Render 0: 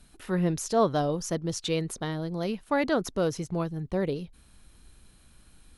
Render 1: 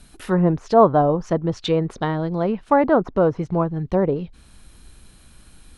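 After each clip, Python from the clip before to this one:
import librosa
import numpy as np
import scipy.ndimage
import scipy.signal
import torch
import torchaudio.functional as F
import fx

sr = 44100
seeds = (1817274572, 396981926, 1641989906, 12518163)

y = fx.dynamic_eq(x, sr, hz=950.0, q=1.3, threshold_db=-42.0, ratio=4.0, max_db=6)
y = fx.env_lowpass_down(y, sr, base_hz=1200.0, full_db=-24.0)
y = F.gain(torch.from_numpy(y), 8.0).numpy()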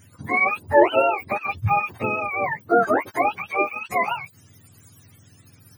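y = fx.octave_mirror(x, sr, pivot_hz=630.0)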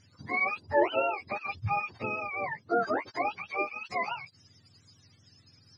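y = fx.ladder_lowpass(x, sr, hz=5200.0, resonance_pct=80)
y = F.gain(torch.from_numpy(y), 2.5).numpy()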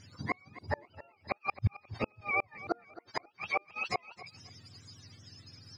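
y = fx.gate_flip(x, sr, shuts_db=-24.0, range_db=-39)
y = fx.echo_feedback(y, sr, ms=267, feedback_pct=26, wet_db=-16.5)
y = F.gain(torch.from_numpy(y), 6.0).numpy()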